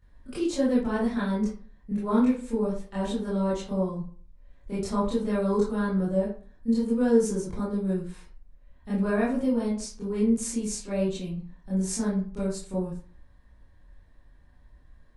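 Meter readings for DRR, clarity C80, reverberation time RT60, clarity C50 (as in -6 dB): -10.5 dB, 10.0 dB, 0.45 s, 3.0 dB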